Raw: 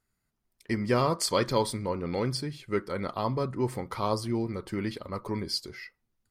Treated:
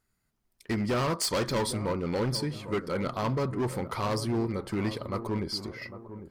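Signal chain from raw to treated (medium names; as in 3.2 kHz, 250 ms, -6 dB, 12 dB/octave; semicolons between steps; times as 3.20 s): 5.27–5.82 s: treble shelf 3.1 kHz -7.5 dB; overload inside the chain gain 27 dB; feedback echo behind a low-pass 801 ms, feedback 39%, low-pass 1.2 kHz, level -12 dB; trim +2.5 dB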